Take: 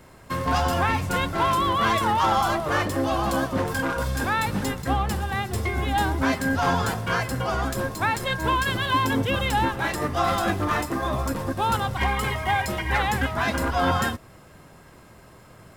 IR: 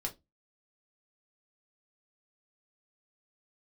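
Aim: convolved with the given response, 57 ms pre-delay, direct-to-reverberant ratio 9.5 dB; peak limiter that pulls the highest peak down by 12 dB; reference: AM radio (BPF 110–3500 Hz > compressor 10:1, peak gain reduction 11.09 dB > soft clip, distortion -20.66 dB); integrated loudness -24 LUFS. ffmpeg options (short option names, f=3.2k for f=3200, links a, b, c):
-filter_complex "[0:a]alimiter=limit=-20.5dB:level=0:latency=1,asplit=2[a][b];[1:a]atrim=start_sample=2205,adelay=57[c];[b][c]afir=irnorm=-1:irlink=0,volume=-10dB[d];[a][d]amix=inputs=2:normalize=0,highpass=110,lowpass=3.5k,acompressor=threshold=-35dB:ratio=10,asoftclip=threshold=-31dB,volume=16dB"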